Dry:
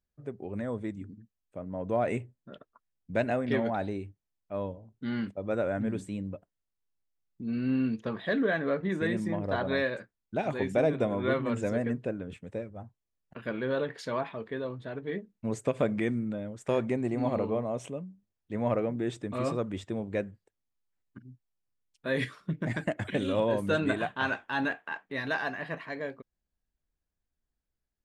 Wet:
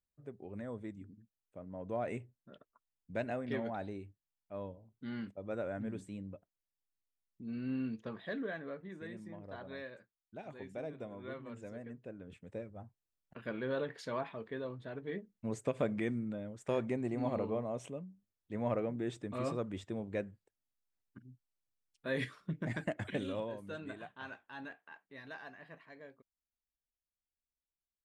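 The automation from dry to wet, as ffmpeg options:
-af "volume=2dB,afade=t=out:st=8.02:d=0.85:silence=0.398107,afade=t=in:st=12:d=0.69:silence=0.281838,afade=t=out:st=23.09:d=0.47:silence=0.281838"

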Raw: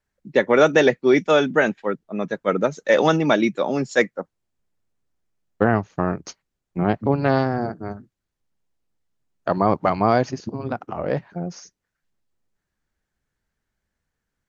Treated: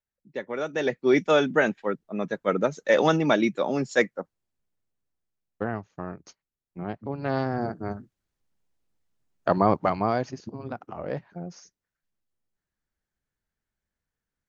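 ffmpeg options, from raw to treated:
-af "volume=9dB,afade=t=in:st=0.72:d=0.43:silence=0.251189,afade=t=out:st=4.03:d=1.77:silence=0.334965,afade=t=in:st=7.14:d=0.8:silence=0.237137,afade=t=out:st=9.49:d=0.65:silence=0.421697"

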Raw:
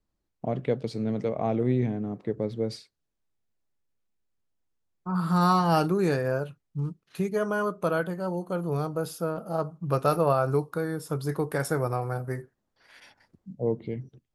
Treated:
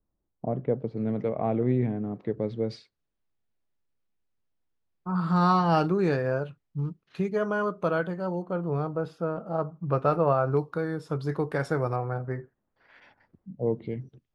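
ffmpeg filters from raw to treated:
-af "asetnsamples=n=441:p=0,asendcmd='0.97 lowpass f 2400;2.16 lowpass f 4100;8.42 lowpass f 2300;10.57 lowpass f 4200;11.96 lowpass f 2200;13.59 lowpass f 5000',lowpass=1.1k"

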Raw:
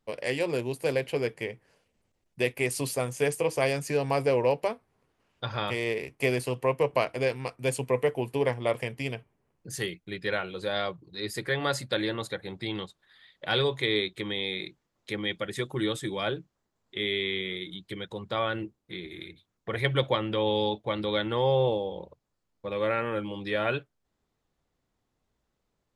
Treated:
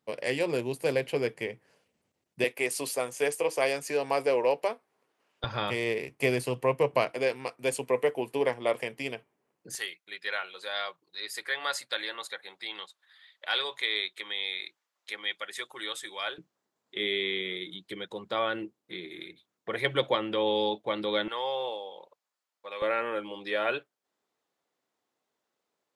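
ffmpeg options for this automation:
-af "asetnsamples=n=441:p=0,asendcmd='2.44 highpass f 350;5.44 highpass f 110;7.11 highpass f 260;9.75 highpass f 910;16.38 highpass f 240;21.28 highpass f 830;22.82 highpass f 370',highpass=130"

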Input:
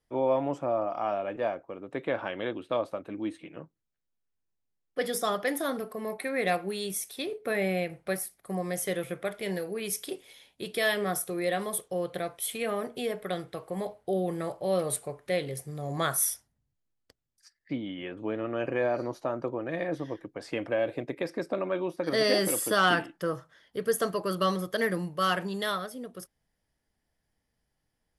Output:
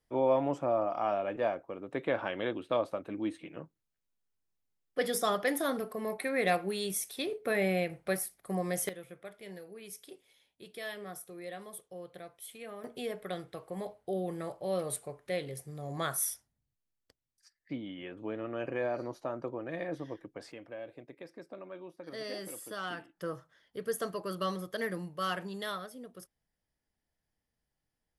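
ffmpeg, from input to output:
-af "asetnsamples=n=441:p=0,asendcmd='8.89 volume volume -14dB;12.84 volume volume -5.5dB;20.52 volume volume -15.5dB;23.17 volume volume -7dB',volume=-1dB"

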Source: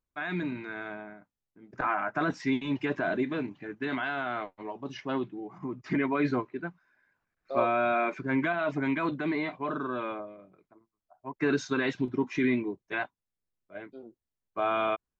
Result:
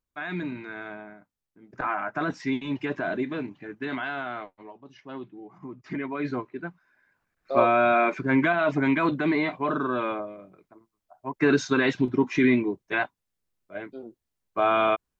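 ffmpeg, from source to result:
-af "volume=18.5dB,afade=t=out:st=4.16:d=0.74:silence=0.237137,afade=t=in:st=4.9:d=0.52:silence=0.398107,afade=t=in:st=6.13:d=1.42:silence=0.316228"

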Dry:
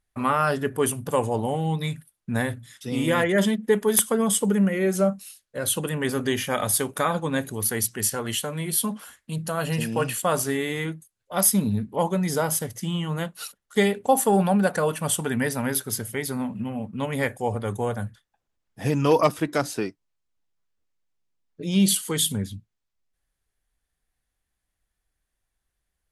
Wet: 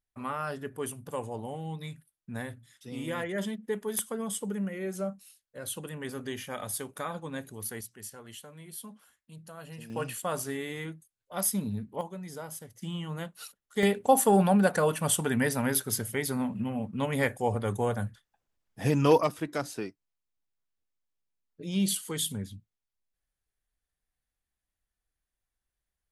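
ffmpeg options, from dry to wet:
-af "asetnsamples=n=441:p=0,asendcmd='7.81 volume volume -18.5dB;9.9 volume volume -9dB;12.01 volume volume -16.5dB;12.82 volume volume -8.5dB;13.83 volume volume -2dB;19.18 volume volume -8dB',volume=-12dB"

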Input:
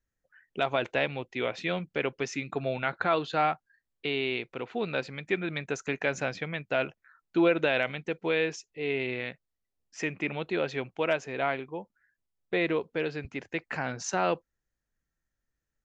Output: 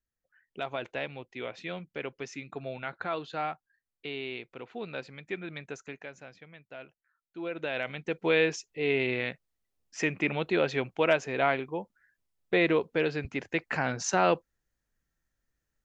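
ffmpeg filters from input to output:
-af "volume=13dB,afade=t=out:st=5.66:d=0.47:silence=0.316228,afade=t=in:st=7.37:d=0.46:silence=0.251189,afade=t=in:st=7.83:d=0.52:silence=0.398107"

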